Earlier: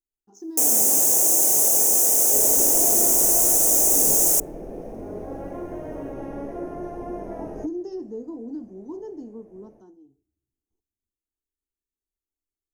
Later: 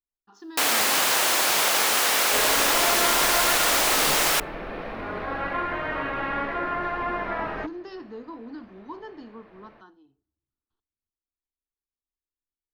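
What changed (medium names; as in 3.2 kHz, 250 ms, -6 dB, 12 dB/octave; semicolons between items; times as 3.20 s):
speech -4.0 dB; master: remove FFT filter 210 Hz 0 dB, 380 Hz +3 dB, 760 Hz -5 dB, 1.2 kHz -23 dB, 4.2 kHz -23 dB, 6.3 kHz +8 dB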